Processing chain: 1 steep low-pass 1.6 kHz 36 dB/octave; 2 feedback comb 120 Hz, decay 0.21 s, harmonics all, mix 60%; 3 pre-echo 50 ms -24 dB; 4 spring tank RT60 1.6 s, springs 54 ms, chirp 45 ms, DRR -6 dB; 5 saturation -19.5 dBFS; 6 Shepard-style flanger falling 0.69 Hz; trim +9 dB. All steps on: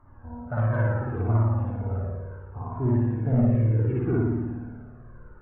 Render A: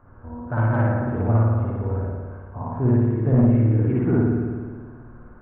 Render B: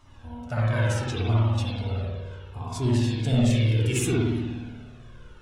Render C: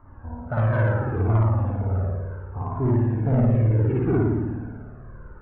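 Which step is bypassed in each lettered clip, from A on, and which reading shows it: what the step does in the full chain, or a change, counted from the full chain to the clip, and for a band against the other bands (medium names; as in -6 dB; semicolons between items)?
6, 250 Hz band +1.5 dB; 1, 2 kHz band +5.5 dB; 2, 250 Hz band -2.5 dB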